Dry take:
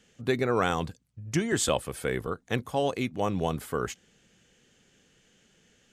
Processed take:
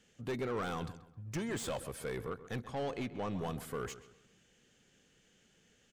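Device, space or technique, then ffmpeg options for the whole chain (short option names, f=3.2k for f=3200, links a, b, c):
saturation between pre-emphasis and de-emphasis: -filter_complex "[0:a]asettb=1/sr,asplit=3[a][b][c];[a]atrim=end=2.644[d];[b]atrim=start=2.64:end=3.31,asetpts=PTS-STARTPTS,afade=t=in:d=0.004:c=qsin,afade=t=out:st=0.666:d=0.004:c=qsin,lowpass=5.9k[e];[c]atrim=start=3.306[f];[d][e]acrossfade=d=0.004:c1=hsin:c2=qsin[g];[g][f]acrossfade=d=0.004:c1=qsin:c2=hsin,highshelf=f=2.4k:g=10.5,asoftclip=type=tanh:threshold=-26.5dB,highshelf=f=2.4k:g=-10.5,asplit=2[h][i];[i]adelay=132,lowpass=f=3.1k:p=1,volume=-14dB,asplit=2[j][k];[k]adelay=132,lowpass=f=3.1k:p=1,volume=0.37,asplit=2[l][m];[m]adelay=132,lowpass=f=3.1k:p=1,volume=0.37,asplit=2[n][o];[o]adelay=132,lowpass=f=3.1k:p=1,volume=0.37[p];[h][j][l][n][p]amix=inputs=5:normalize=0,volume=-5dB"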